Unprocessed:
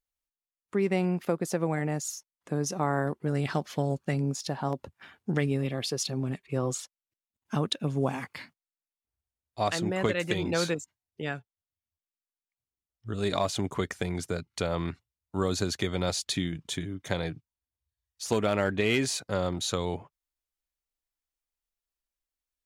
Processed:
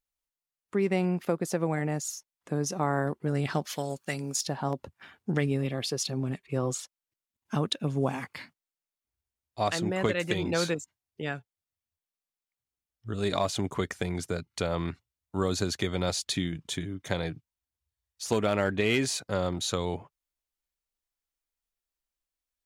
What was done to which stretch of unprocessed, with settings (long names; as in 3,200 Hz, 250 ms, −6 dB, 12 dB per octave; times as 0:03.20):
0:03.65–0:04.44: spectral tilt +3 dB per octave